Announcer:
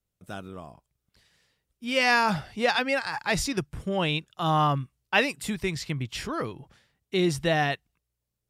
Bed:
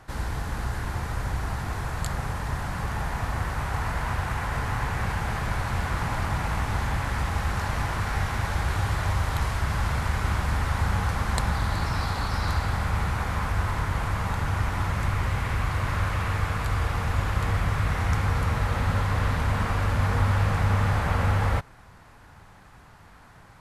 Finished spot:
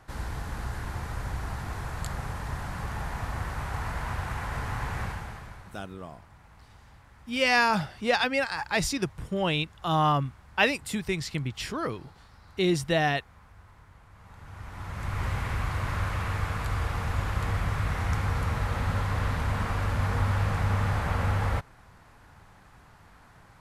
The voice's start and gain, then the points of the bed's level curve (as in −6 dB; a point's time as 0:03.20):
5.45 s, −0.5 dB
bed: 0:05.02 −4.5 dB
0:05.92 −27 dB
0:14.09 −27 dB
0:15.24 −3.5 dB